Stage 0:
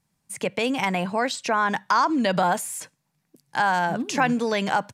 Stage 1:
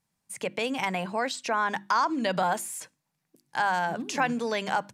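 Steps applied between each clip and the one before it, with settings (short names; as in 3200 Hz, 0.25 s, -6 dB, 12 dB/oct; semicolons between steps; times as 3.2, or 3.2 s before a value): low shelf 230 Hz -4 dB; notches 50/100/150/200/250/300/350 Hz; gain -4 dB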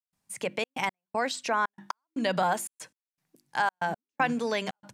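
step gate ".xxxx.x." 118 bpm -60 dB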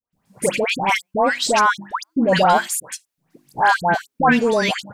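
in parallel at -3.5 dB: soft clip -27 dBFS, distortion -9 dB; on the sum: dispersion highs, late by 0.129 s, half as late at 1400 Hz; gain +9 dB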